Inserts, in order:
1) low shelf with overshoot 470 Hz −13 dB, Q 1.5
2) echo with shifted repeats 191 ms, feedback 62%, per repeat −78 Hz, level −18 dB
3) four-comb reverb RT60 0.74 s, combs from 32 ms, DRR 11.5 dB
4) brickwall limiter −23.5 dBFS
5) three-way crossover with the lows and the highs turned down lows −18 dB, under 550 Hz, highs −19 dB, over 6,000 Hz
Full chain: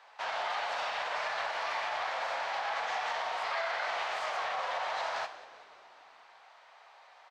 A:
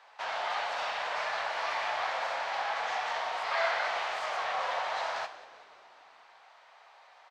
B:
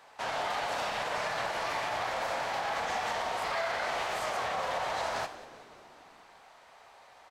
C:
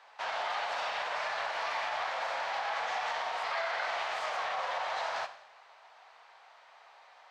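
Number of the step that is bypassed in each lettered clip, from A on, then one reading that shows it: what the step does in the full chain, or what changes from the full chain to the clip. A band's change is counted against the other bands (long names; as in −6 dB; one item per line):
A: 4, change in crest factor +1.5 dB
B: 5, 8 kHz band +5.5 dB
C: 2, change in momentary loudness spread −1 LU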